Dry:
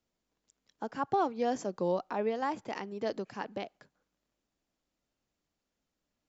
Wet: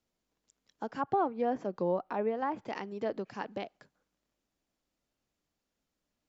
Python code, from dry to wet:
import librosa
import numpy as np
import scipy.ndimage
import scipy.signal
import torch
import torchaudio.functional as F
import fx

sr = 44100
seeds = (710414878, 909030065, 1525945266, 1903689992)

y = fx.env_lowpass_down(x, sr, base_hz=1800.0, full_db=-28.0)